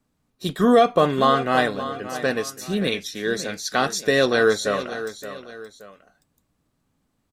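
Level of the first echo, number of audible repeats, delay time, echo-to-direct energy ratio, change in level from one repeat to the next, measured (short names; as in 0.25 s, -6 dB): -12.5 dB, 2, 0.573 s, -12.0 dB, -8.0 dB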